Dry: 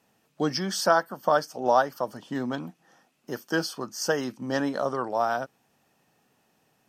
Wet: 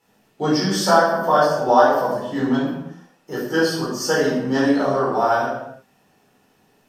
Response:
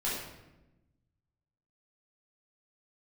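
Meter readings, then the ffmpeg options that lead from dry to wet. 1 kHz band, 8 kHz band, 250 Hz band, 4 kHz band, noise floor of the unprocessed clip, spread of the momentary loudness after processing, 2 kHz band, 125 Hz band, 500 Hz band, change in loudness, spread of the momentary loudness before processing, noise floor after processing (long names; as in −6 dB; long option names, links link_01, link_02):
+8.0 dB, +5.5 dB, +10.0 dB, +6.5 dB, −69 dBFS, 13 LU, +7.5 dB, +9.5 dB, +8.5 dB, +8.0 dB, 11 LU, −61 dBFS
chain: -filter_complex "[1:a]atrim=start_sample=2205,afade=type=out:start_time=0.43:duration=0.01,atrim=end_sample=19404[link_01];[0:a][link_01]afir=irnorm=-1:irlink=0,volume=1.5dB"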